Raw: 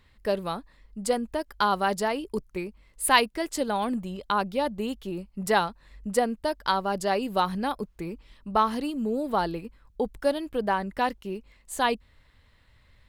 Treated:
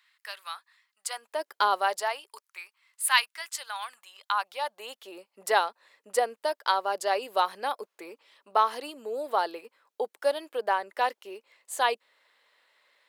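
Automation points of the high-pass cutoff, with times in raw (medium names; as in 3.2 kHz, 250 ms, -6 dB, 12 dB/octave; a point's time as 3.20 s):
high-pass 24 dB/octave
1.05 s 1.2 kHz
1.51 s 340 Hz
2.51 s 1.1 kHz
4.07 s 1.1 kHz
5.25 s 450 Hz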